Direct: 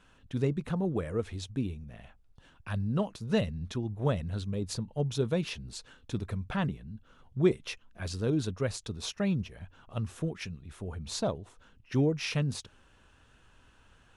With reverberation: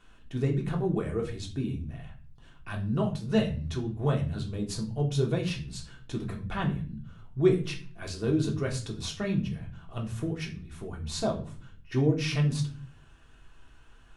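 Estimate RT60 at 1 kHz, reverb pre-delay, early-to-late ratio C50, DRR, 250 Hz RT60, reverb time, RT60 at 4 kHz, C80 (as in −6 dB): 0.40 s, 3 ms, 11.0 dB, −0.5 dB, 0.80 s, 0.40 s, 0.35 s, 16.5 dB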